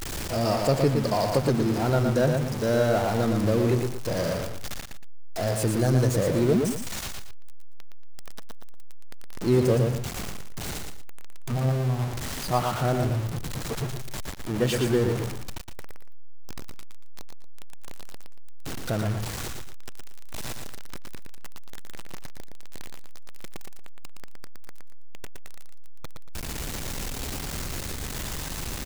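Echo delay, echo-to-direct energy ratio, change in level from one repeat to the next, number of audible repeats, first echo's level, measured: 116 ms, −4.5 dB, −10.5 dB, 2, −5.0 dB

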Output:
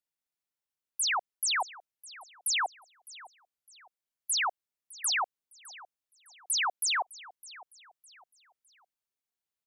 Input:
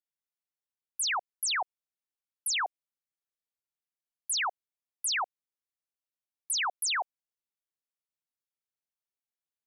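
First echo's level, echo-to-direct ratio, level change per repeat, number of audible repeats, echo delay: −19.5 dB, −19.0 dB, −9.0 dB, 2, 608 ms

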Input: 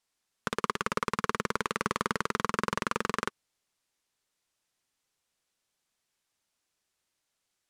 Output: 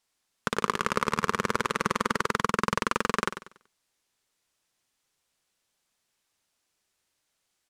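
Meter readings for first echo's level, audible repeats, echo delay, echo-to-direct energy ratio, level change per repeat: −11.0 dB, 3, 95 ms, −10.5 dB, −9.5 dB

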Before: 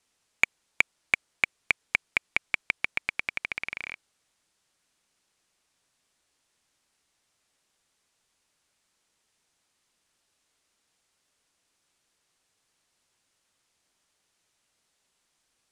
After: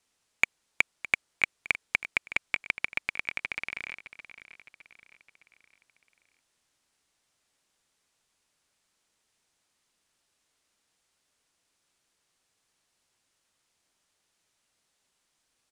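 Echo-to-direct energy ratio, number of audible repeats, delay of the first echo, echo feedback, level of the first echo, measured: −14.0 dB, 4, 612 ms, 47%, −15.0 dB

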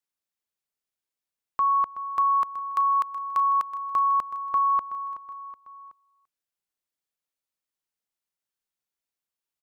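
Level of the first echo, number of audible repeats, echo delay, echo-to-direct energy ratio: −13.5 dB, 3, 374 ms, −12.0 dB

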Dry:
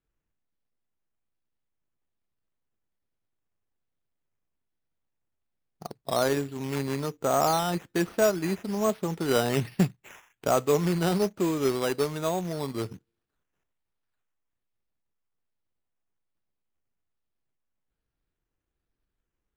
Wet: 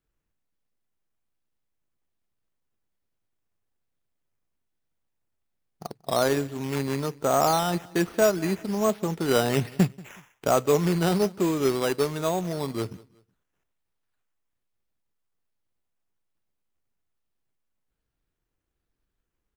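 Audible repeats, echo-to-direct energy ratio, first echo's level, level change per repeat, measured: 2, −22.5 dB, −23.0 dB, −9.0 dB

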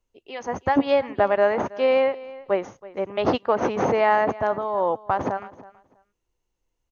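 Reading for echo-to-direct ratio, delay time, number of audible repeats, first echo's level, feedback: −19.0 dB, 325 ms, 2, −19.0 dB, 18%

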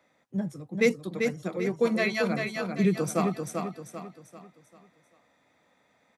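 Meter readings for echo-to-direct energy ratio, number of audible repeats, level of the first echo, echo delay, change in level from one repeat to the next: −4.0 dB, 4, −5.0 dB, 392 ms, −8.0 dB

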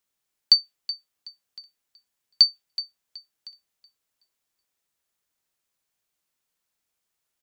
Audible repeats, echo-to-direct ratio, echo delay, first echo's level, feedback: 2, −14.5 dB, 374 ms, −15.0 dB, 25%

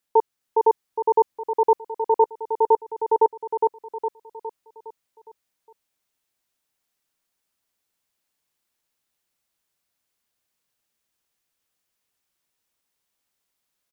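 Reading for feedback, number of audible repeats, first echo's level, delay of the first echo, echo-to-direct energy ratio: 47%, 5, −3.0 dB, 411 ms, −2.0 dB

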